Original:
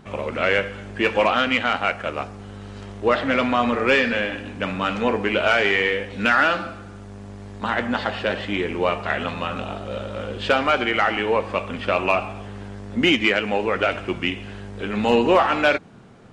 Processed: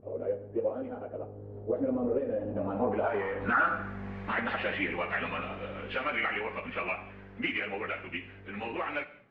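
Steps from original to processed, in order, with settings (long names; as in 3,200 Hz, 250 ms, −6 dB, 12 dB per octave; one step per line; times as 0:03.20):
source passing by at 0:06.05, 8 m/s, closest 9.5 metres
high-shelf EQ 3,100 Hz +2.5 dB
downward compressor 2.5 to 1, threshold −31 dBFS, peak gain reduction 12 dB
soft clipping −20.5 dBFS, distortion −22 dB
low-pass filter sweep 480 Hz → 2,200 Hz, 0:04.03–0:07.31
time stretch by phase vocoder 0.57×
reverb whose tail is shaped and stops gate 250 ms falling, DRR 11.5 dB
level +4 dB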